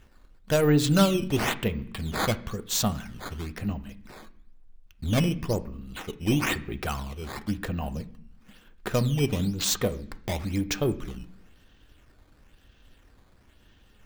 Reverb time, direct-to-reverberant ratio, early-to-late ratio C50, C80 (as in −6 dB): 0.70 s, 9.0 dB, 17.0 dB, 20.5 dB